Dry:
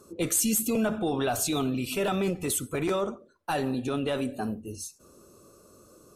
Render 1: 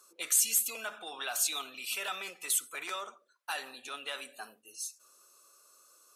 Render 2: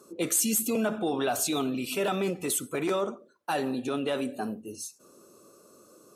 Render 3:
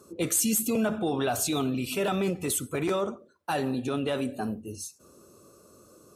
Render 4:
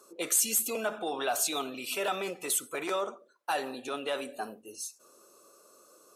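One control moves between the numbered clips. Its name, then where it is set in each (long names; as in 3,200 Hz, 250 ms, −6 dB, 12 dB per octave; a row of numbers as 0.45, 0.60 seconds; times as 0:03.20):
high-pass filter, corner frequency: 1,400, 200, 66, 550 Hertz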